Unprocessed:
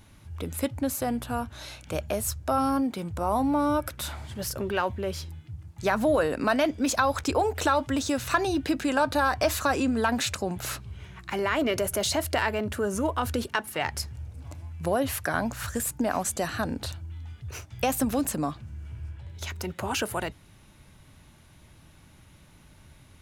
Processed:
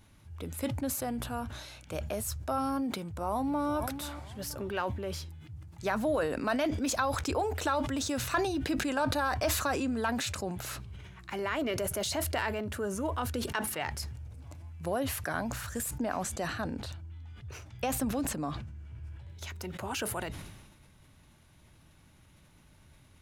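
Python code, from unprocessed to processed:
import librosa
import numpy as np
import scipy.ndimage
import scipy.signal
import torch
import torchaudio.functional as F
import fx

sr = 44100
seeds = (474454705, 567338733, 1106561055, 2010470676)

y = fx.echo_throw(x, sr, start_s=2.99, length_s=0.72, ms=480, feedback_pct=35, wet_db=-14.5)
y = fx.high_shelf(y, sr, hz=7900.0, db=-9.0, at=(15.98, 19.04))
y = fx.sustainer(y, sr, db_per_s=45.0)
y = y * librosa.db_to_amplitude(-6.5)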